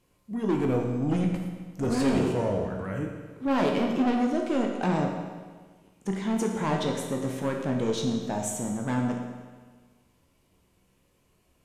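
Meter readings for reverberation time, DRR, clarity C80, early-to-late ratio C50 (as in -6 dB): 1.5 s, 1.0 dB, 5.5 dB, 3.5 dB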